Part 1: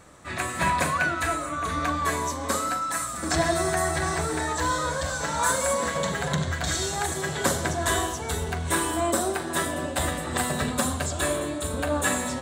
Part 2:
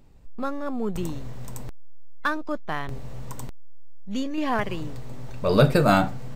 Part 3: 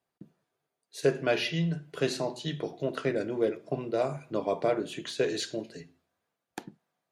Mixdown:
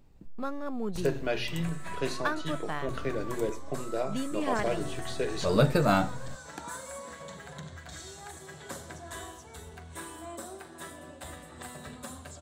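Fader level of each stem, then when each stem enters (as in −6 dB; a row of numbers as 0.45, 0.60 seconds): −17.0, −5.5, −4.0 decibels; 1.25, 0.00, 0.00 seconds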